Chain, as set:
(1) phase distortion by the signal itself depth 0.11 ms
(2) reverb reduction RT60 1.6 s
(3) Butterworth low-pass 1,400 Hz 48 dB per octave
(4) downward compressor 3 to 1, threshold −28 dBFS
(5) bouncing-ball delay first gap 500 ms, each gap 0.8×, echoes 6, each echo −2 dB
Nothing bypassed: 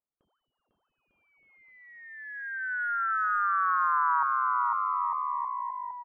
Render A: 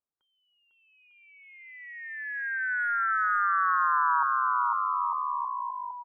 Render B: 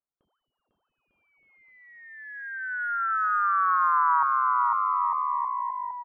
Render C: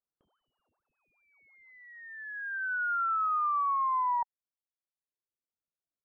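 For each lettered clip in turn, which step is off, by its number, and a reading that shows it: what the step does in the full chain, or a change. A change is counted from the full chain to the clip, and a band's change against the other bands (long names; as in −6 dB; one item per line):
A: 1, change in momentary loudness spread +3 LU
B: 4, average gain reduction 1.5 dB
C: 5, change in crest factor −5.0 dB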